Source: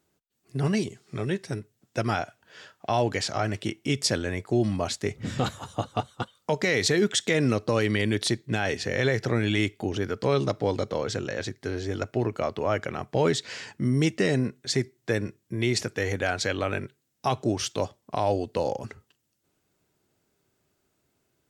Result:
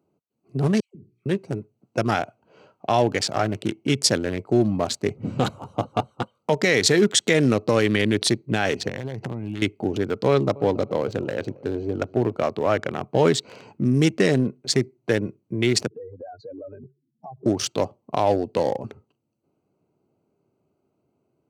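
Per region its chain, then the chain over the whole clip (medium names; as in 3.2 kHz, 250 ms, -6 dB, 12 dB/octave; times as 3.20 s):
0.80–1.26 s: amplifier tone stack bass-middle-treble 10-0-1 + hum notches 60/120/180/240/300/360/420/480 Hz + phase dispersion lows, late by 148 ms, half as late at 1.1 kHz
8.88–9.62 s: treble shelf 4.8 kHz -3.5 dB + comb 1.1 ms, depth 48% + compression, threshold -29 dBFS
10.28–12.40 s: treble shelf 4.8 kHz -8 dB + feedback delay 275 ms, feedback 37%, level -20 dB
15.87–17.46 s: spectral contrast enhancement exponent 3.7 + high-pass 150 Hz + compression 3:1, threshold -43 dBFS
whole clip: local Wiener filter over 25 samples; high-pass 120 Hz; treble shelf 8.8 kHz +4.5 dB; trim +5.5 dB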